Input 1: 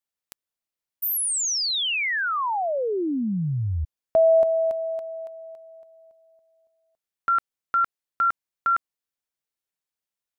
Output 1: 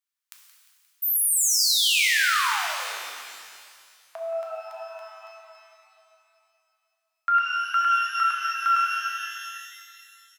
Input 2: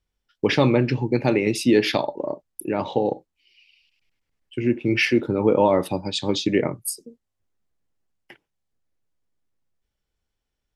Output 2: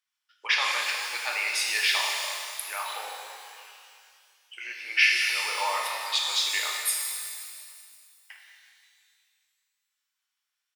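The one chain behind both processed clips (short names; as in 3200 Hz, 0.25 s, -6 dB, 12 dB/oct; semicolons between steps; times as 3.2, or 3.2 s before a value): HPF 1100 Hz 24 dB/oct; frequency-shifting echo 0.176 s, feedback 63%, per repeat +110 Hz, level -16 dB; wow and flutter 27 cents; shimmer reverb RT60 2.1 s, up +12 st, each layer -8 dB, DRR -1 dB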